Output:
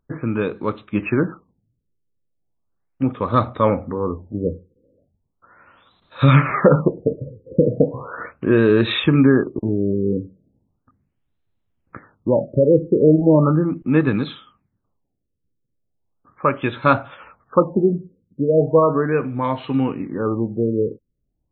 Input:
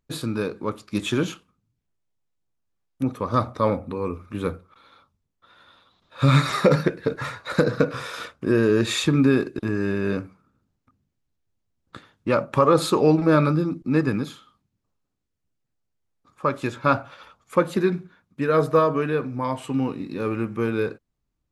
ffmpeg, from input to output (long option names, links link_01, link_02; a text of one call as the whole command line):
ffmpeg -i in.wav -filter_complex "[0:a]asettb=1/sr,asplit=3[link_01][link_02][link_03];[link_01]atrim=end=14.174[link_04];[link_02]atrim=start=14.17:end=16.84,asetpts=PTS-STARTPTS,afade=type=in:duration=0.004:curve=qsin,afade=type=out:start_time=2.666:duration=0.004:curve=qsin,highshelf=frequency=3600:gain=7.5[link_05];[link_03]atrim=start=16.836[link_06];[link_04][link_05]acrossfade=duration=0.004:curve1=hsin:curve2=qsin[link_07];[link_07][link_06]acrossfade=duration=0.004:curve1=qsin:curve2=hsin,afftfilt=real='re*lt(b*sr/1024,540*pow(4300/540,0.5+0.5*sin(2*PI*0.37*pts/sr)))':imag='im*lt(b*sr/1024,540*pow(4300/540,0.5+0.5*sin(2*PI*0.37*pts/sr)))':win_size=1024:overlap=0.75,volume=4.5dB" out.wav